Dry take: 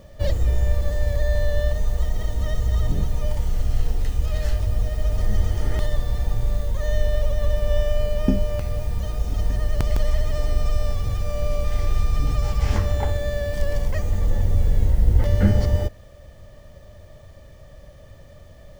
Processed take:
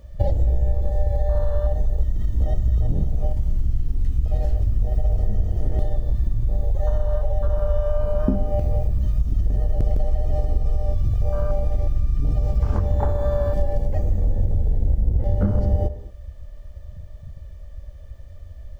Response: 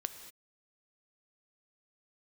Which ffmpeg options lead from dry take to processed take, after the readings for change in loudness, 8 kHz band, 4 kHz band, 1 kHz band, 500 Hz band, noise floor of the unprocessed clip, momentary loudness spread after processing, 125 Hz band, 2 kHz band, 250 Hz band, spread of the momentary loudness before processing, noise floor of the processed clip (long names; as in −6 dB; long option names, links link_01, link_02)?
+0.5 dB, can't be measured, below −10 dB, +0.5 dB, +0.5 dB, −45 dBFS, 19 LU, +1.0 dB, −12.5 dB, −1.0 dB, 6 LU, −39 dBFS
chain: -filter_complex "[0:a]afwtdn=0.0398,acompressor=threshold=-25dB:ratio=6,asplit=2[link_01][link_02];[1:a]atrim=start_sample=2205[link_03];[link_02][link_03]afir=irnorm=-1:irlink=0,volume=6.5dB[link_04];[link_01][link_04]amix=inputs=2:normalize=0"